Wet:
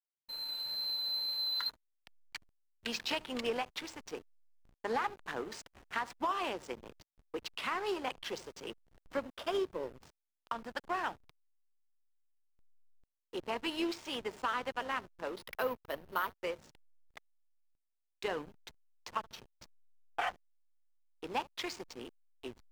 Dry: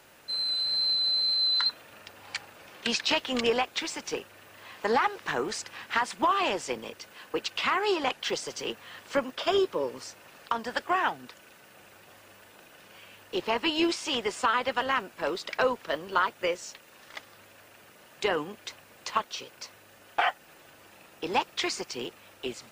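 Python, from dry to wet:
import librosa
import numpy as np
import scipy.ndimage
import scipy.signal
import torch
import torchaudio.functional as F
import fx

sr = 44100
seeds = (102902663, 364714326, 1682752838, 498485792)

p1 = x + fx.echo_single(x, sr, ms=74, db=-18.5, dry=0)
p2 = p1 + 10.0 ** (-53.0 / 20.0) * np.sin(2.0 * np.pi * 910.0 * np.arange(len(p1)) / sr)
p3 = fx.hum_notches(p2, sr, base_hz=50, count=4)
p4 = fx.backlash(p3, sr, play_db=-30.5)
p5 = fx.resample_bad(p4, sr, factor=3, down='filtered', up='hold', at=(15.38, 16.36))
y = F.gain(torch.from_numpy(p5), -8.5).numpy()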